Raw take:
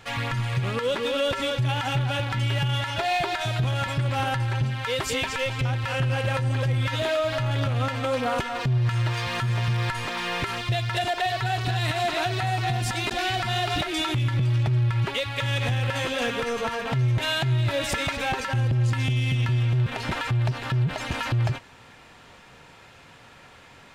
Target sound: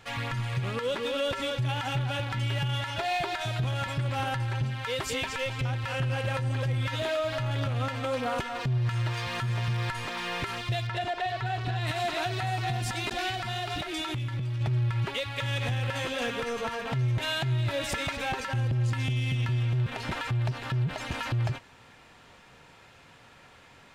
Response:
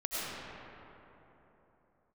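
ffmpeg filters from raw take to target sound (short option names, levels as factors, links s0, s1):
-filter_complex "[0:a]asettb=1/sr,asplit=3[s0][s1][s2];[s0]atrim=end=10.874[s3];[s1]atrim=start=10.87:end=11.87,asetpts=PTS-STARTPTS,afade=t=in:d=0.004:c=qsin,afade=t=out:st=0.996:d=0.004:c=qsin,lowpass=f=2700:p=1[s4];[s2]atrim=start=11.866[s5];[s3][s4]acrossfade=d=0.004:c1=hsin:c2=qsin[s6];[s6][s5]acrossfade=d=0.004:c1=qsin:c2=hsin,asettb=1/sr,asplit=3[s7][s8][s9];[s7]atrim=end=13.294[s10];[s8]atrim=start=13.29:end=14.61,asetpts=PTS-STARTPTS,afade=t=in:d=0.004:c=qsin,afade=t=out:st=1.316:d=0.004:c=qsin,acompressor=threshold=0.0562:ratio=6[s11];[s9]atrim=start=14.606[s12];[s10][s11]acrossfade=d=0.004:c1=hsin:c2=qsin[s13];[s13][s12]acrossfade=d=0.004:c1=qsin:c2=hsin,volume=0.596"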